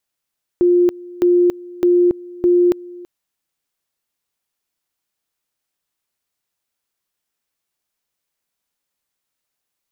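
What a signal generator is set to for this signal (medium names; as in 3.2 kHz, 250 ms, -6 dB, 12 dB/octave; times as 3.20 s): two-level tone 353 Hz -9.5 dBFS, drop 22 dB, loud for 0.28 s, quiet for 0.33 s, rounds 4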